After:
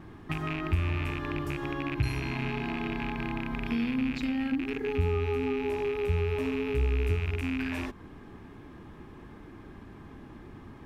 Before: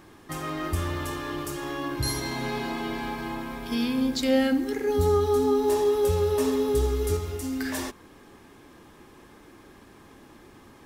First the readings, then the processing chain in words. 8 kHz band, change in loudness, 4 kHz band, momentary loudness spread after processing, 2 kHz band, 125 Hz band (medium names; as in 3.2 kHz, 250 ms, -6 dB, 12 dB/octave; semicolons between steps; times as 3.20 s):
under -15 dB, -4.5 dB, -8.0 dB, 19 LU, 0.0 dB, +1.5 dB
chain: rattle on loud lows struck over -35 dBFS, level -17 dBFS; compression 3:1, threshold -32 dBFS, peak gain reduction 11 dB; vibrato 0.48 Hz 12 cents; tone controls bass +9 dB, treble -14 dB; band-stop 530 Hz, Q 12